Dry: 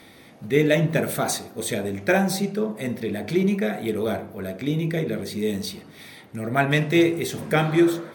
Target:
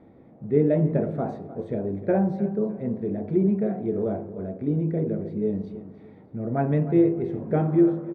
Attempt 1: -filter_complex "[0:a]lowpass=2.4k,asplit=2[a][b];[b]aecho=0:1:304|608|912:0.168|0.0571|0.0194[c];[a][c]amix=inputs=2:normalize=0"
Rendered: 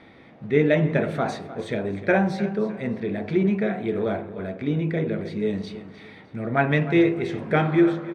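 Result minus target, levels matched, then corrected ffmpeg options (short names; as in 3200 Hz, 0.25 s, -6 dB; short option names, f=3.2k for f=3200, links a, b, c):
2000 Hz band +16.0 dB
-filter_complex "[0:a]lowpass=610,asplit=2[a][b];[b]aecho=0:1:304|608|912:0.168|0.0571|0.0194[c];[a][c]amix=inputs=2:normalize=0"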